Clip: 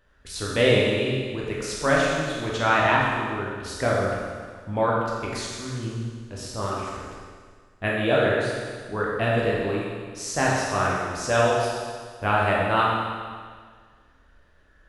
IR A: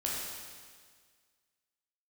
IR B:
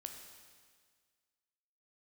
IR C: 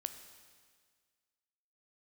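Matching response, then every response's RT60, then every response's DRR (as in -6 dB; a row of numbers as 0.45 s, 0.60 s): A; 1.7 s, 1.7 s, 1.7 s; -5.0 dB, 3.5 dB, 8.5 dB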